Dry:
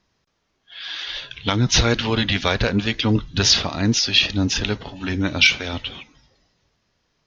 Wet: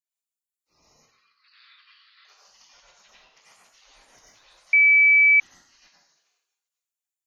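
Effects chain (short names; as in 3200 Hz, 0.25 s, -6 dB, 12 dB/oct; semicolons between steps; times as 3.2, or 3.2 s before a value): spectral gate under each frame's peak -30 dB weak; 0.93–2.25 Chebyshev band-pass 1100–4600 Hz, order 5; compressor 4:1, threshold -59 dBFS, peak gain reduction 20 dB; plate-style reverb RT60 0.59 s, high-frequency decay 0.95×, pre-delay 75 ms, DRR -5 dB; 4.73–5.4 bleep 2300 Hz -10 dBFS; gain -2 dB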